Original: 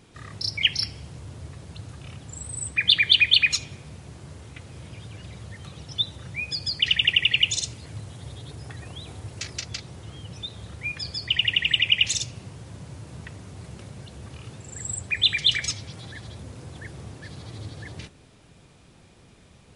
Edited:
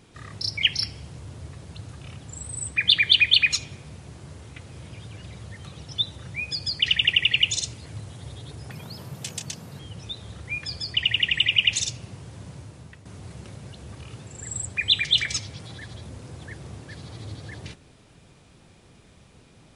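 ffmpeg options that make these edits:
-filter_complex "[0:a]asplit=4[s0][s1][s2][s3];[s0]atrim=end=8.714[s4];[s1]atrim=start=8.71:end=10.13,asetpts=PTS-STARTPTS,asetrate=57771,aresample=44100,atrim=end_sample=47803,asetpts=PTS-STARTPTS[s5];[s2]atrim=start=10.126:end=13.39,asetpts=PTS-STARTPTS,afade=t=out:st=2.714:d=0.55:silence=0.316228[s6];[s3]atrim=start=13.39,asetpts=PTS-STARTPTS,afade=t=in:d=0.004:c=hsin:silence=0.316228[s7];[s4][s5]acrossfade=d=0.004:c1=hsin:c2=hsin[s8];[s6][s7]concat=n=2:v=0:a=1[s9];[s8][s9]acrossfade=d=0.004:c1=hsin:c2=hsin"

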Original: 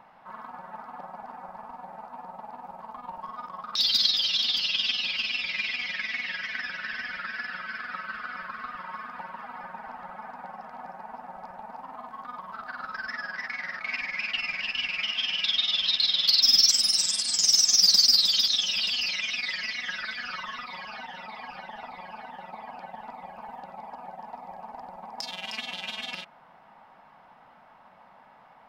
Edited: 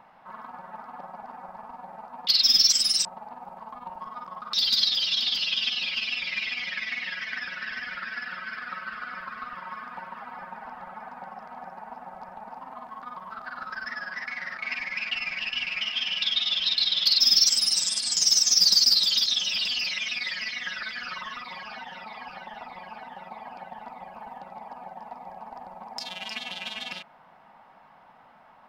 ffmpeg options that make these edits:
-filter_complex "[0:a]asplit=3[s0][s1][s2];[s0]atrim=end=2.272[s3];[s1]atrim=start=16.258:end=17.042[s4];[s2]atrim=start=2.268[s5];[s3][s4]acrossfade=d=0.004:c1=hsin:c2=hsin[s6];[s6][s5]acrossfade=d=0.004:c1=hsin:c2=hsin"

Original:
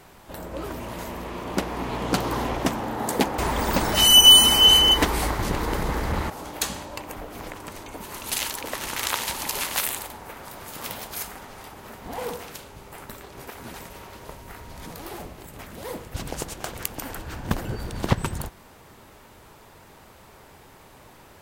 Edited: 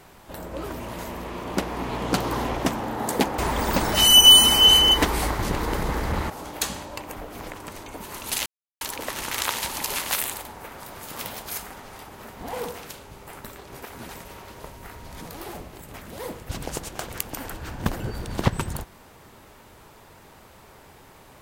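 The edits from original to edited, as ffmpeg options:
-filter_complex "[0:a]asplit=2[s0][s1];[s0]atrim=end=8.46,asetpts=PTS-STARTPTS,afade=t=out:st=8.456:d=0.004:c=hsin,apad=pad_dur=0.35[s2];[s1]atrim=start=8.46,asetpts=PTS-STARTPTS,afade=t=in:d=0.004:c=hsin[s3];[s2][s3]concat=n=2:v=0:a=1"

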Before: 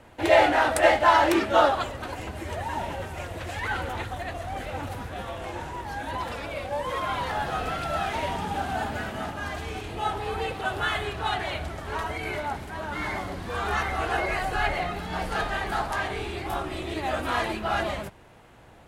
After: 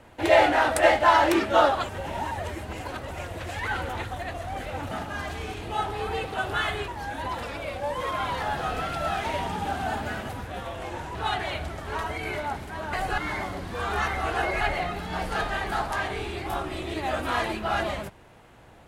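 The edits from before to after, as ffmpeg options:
-filter_complex "[0:a]asplit=10[s0][s1][s2][s3][s4][s5][s6][s7][s8][s9];[s0]atrim=end=1.892[s10];[s1]atrim=start=1.888:end=3.112,asetpts=PTS-STARTPTS,areverse[s11];[s2]atrim=start=3.108:end=4.912[s12];[s3]atrim=start=9.178:end=11.152[s13];[s4]atrim=start=5.768:end=9.182[s14];[s5]atrim=start=4.908:end=5.772[s15];[s6]atrim=start=11.148:end=12.932[s16];[s7]atrim=start=14.358:end=14.612[s17];[s8]atrim=start=12.928:end=14.362[s18];[s9]atrim=start=14.608[s19];[s10][s11]acrossfade=d=0.004:c1=hsin:c2=hsin[s20];[s20][s12]acrossfade=d=0.004:c1=hsin:c2=hsin[s21];[s21][s13]acrossfade=d=0.004:c1=hsin:c2=hsin[s22];[s22][s14]acrossfade=d=0.004:c1=hsin:c2=hsin[s23];[s23][s15]acrossfade=d=0.004:c1=hsin:c2=hsin[s24];[s24][s16]acrossfade=d=0.004:c1=hsin:c2=hsin[s25];[s25][s17]acrossfade=d=0.004:c1=hsin:c2=hsin[s26];[s26][s18]acrossfade=d=0.004:c1=hsin:c2=hsin[s27];[s27][s19]acrossfade=d=0.004:c1=hsin:c2=hsin"

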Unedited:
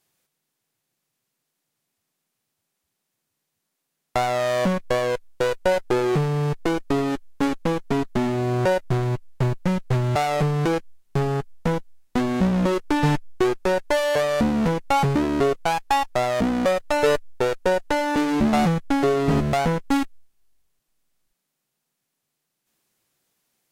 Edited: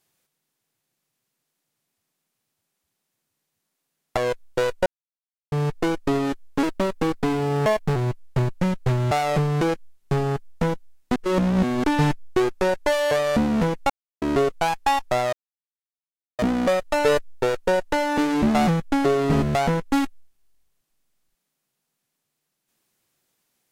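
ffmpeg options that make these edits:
-filter_complex "[0:a]asplit=11[s0][s1][s2][s3][s4][s5][s6][s7][s8][s9][s10];[s0]atrim=end=4.172[s11];[s1]atrim=start=4.998:end=5.69,asetpts=PTS-STARTPTS,afade=t=out:st=0.688:d=0.004:c=hsin[s12];[s2]atrim=start=5.69:end=6.35,asetpts=PTS-STARTPTS,volume=0[s13];[s3]atrim=start=6.35:end=7.464,asetpts=PTS-STARTPTS,afade=t=in:d=0.004:c=hsin[s14];[s4]atrim=start=7.46:end=9,asetpts=PTS-STARTPTS,asetrate=51156,aresample=44100[s15];[s5]atrim=start=8.996:end=12.202[s16];[s6]atrim=start=12.198:end=12.882,asetpts=PTS-STARTPTS,areverse[s17];[s7]atrim=start=12.878:end=14.94,asetpts=PTS-STARTPTS,afade=t=out:st=2.058:d=0.004:c=hsin[s18];[s8]atrim=start=14.94:end=15.26,asetpts=PTS-STARTPTS,volume=0[s19];[s9]atrim=start=15.26:end=16.37,asetpts=PTS-STARTPTS,afade=t=in:d=0.004:c=hsin,afade=t=out:st=1.106:d=0.004:c=hsin,apad=pad_dur=1.06[s20];[s10]atrim=start=16.37,asetpts=PTS-STARTPTS,afade=t=in:d=0.004:c=hsin[s21];[s12][s13][s14]concat=n=3:v=0:a=1[s22];[s11][s22]acrossfade=d=0.004:c1=hsin:c2=hsin[s23];[s23][s15]acrossfade=d=0.004:c1=hsin:c2=hsin[s24];[s24][s16]acrossfade=d=0.004:c1=hsin:c2=hsin[s25];[s25][s17]acrossfade=d=0.004:c1=hsin:c2=hsin[s26];[s18][s19][s20][s21]concat=n=4:v=0:a=1[s27];[s26][s27]acrossfade=d=0.004:c1=hsin:c2=hsin"

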